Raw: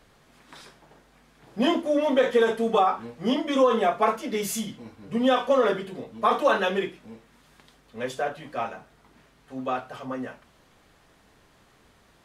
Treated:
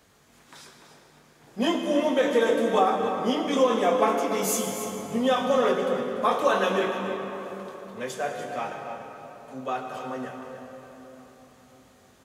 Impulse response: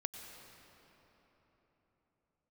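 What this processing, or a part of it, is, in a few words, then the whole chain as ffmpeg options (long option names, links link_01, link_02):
cave: -filter_complex "[0:a]highpass=62,equalizer=frequency=6700:width_type=o:width=0.5:gain=5.5,highshelf=frequency=11000:gain=9.5,asplit=2[link_01][link_02];[link_02]adelay=21,volume=-10.5dB[link_03];[link_01][link_03]amix=inputs=2:normalize=0,aecho=1:1:292:0.266[link_04];[1:a]atrim=start_sample=2205[link_05];[link_04][link_05]afir=irnorm=-1:irlink=0"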